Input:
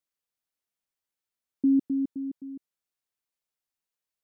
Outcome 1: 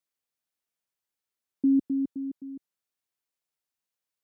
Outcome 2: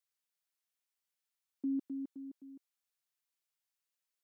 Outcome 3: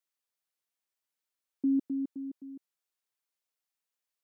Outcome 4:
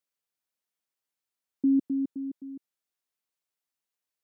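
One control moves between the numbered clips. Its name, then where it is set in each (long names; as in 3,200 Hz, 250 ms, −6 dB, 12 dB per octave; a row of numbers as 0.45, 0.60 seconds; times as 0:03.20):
high-pass filter, corner frequency: 57, 1,200, 430, 150 Hertz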